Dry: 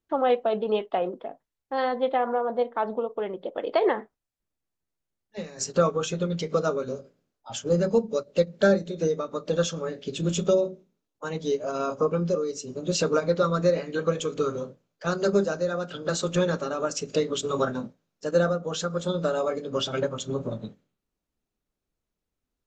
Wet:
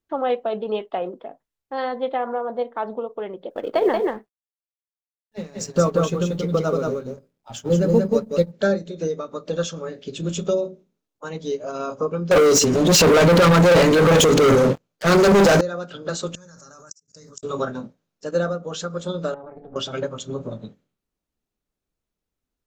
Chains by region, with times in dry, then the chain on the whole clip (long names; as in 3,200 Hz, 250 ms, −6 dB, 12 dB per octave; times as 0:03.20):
0:03.50–0:08.52: mu-law and A-law mismatch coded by A + low-shelf EQ 380 Hz +8.5 dB + single-tap delay 182 ms −3 dB
0:12.31–0:15.61: transient designer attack −5 dB, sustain +10 dB + leveller curve on the samples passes 5
0:16.35–0:17.43: drawn EQ curve 140 Hz 0 dB, 360 Hz −14 dB, 1,600 Hz −2 dB, 3,200 Hz −20 dB, 5,300 Hz +13 dB + output level in coarse steps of 23 dB + gate with flip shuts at −23 dBFS, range −31 dB
0:19.34–0:19.76: low-pass filter 1,300 Hz + amplitude modulation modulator 280 Hz, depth 75% + downward compressor 5 to 1, threshold −36 dBFS
whole clip: no processing